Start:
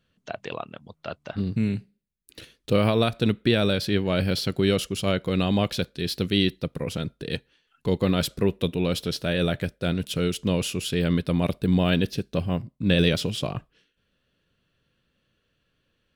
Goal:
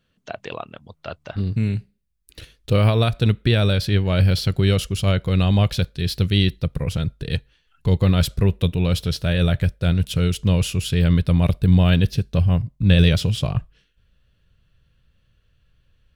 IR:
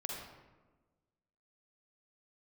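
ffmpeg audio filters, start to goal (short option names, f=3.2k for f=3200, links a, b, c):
-af "asubboost=boost=8.5:cutoff=94,volume=2dB"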